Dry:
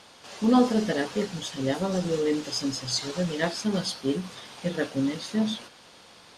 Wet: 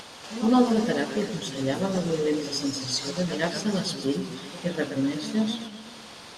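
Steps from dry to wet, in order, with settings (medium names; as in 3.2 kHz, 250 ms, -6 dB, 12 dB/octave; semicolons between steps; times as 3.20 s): upward compressor, threshold -36 dBFS; pre-echo 115 ms -13.5 dB; modulated delay 126 ms, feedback 57%, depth 155 cents, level -10.5 dB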